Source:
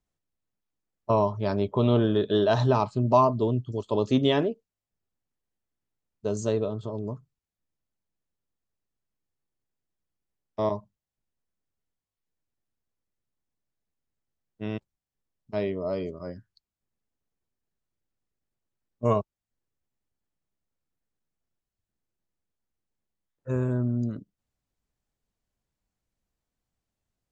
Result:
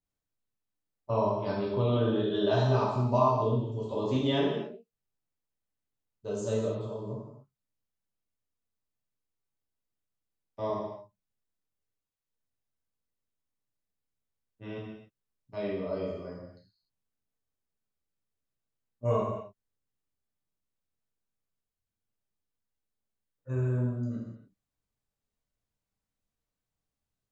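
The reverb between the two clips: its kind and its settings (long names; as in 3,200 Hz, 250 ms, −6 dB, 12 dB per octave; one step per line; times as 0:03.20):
reverb whose tail is shaped and stops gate 330 ms falling, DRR −6.5 dB
level −11 dB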